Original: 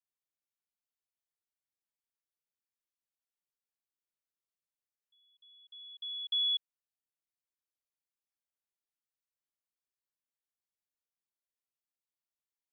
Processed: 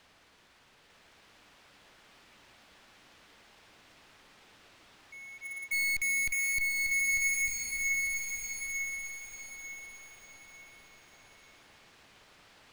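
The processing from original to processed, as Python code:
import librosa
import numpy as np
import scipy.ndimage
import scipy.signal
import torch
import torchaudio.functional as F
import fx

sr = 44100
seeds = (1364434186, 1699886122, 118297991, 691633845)

p1 = fx.pitch_heads(x, sr, semitones=-7.5)
p2 = scipy.signal.sosfilt(scipy.signal.butter(2, 3300.0, 'lowpass', fs=sr, output='sos'), p1)
p3 = fx.fuzz(p2, sr, gain_db=59.0, gate_db=-58.0)
p4 = p2 + (p3 * 10.0 ** (-7.0 / 20.0))
p5 = fx.power_curve(p4, sr, exponent=0.5)
p6 = 10.0 ** (-26.0 / 20.0) * np.tanh(p5 / 10.0 ** (-26.0 / 20.0))
p7 = p6 + fx.echo_feedback(p6, sr, ms=897, feedback_pct=35, wet_db=-4, dry=0)
p8 = fx.rev_bloom(p7, sr, seeds[0], attack_ms=1390, drr_db=2.5)
y = p8 * 10.0 ** (-2.5 / 20.0)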